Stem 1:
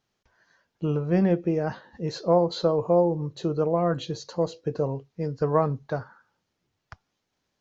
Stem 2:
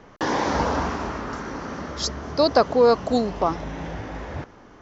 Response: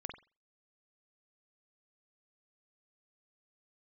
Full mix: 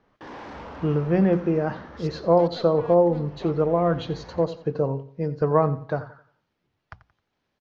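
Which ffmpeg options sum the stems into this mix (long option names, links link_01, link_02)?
-filter_complex "[0:a]bandreject=frequency=60:width_type=h:width=6,bandreject=frequency=120:width_type=h:width=6,bandreject=frequency=180:width_type=h:width=6,volume=2.5dB,asplit=2[link_01][link_02];[link_02]volume=-16dB[link_03];[1:a]dynaudnorm=framelen=180:gausssize=3:maxgain=9dB,asoftclip=type=tanh:threshold=-18.5dB,volume=-17.5dB[link_04];[link_03]aecho=0:1:88|176|264|352|440:1|0.33|0.109|0.0359|0.0119[link_05];[link_01][link_04][link_05]amix=inputs=3:normalize=0,lowpass=3500"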